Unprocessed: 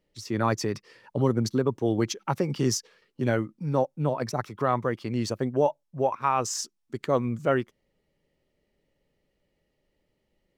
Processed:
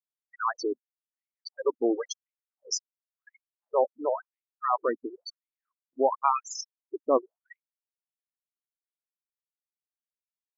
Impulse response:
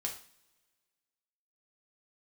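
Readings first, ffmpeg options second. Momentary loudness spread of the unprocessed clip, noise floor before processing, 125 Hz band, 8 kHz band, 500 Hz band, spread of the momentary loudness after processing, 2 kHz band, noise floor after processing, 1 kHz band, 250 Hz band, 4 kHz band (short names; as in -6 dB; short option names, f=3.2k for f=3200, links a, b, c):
7 LU, -76 dBFS, under -40 dB, -3.5 dB, -2.5 dB, 14 LU, -7.0 dB, under -85 dBFS, -1.0 dB, -8.5 dB, -4.0 dB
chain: -af "afftfilt=real='re*gte(hypot(re,im),0.0794)':imag='im*gte(hypot(re,im),0.0794)':win_size=1024:overlap=0.75,afftfilt=real='re*gte(b*sr/1024,220*pow(2200/220,0.5+0.5*sin(2*PI*0.95*pts/sr)))':imag='im*gte(b*sr/1024,220*pow(2200/220,0.5+0.5*sin(2*PI*0.95*pts/sr)))':win_size=1024:overlap=0.75,volume=1.5dB"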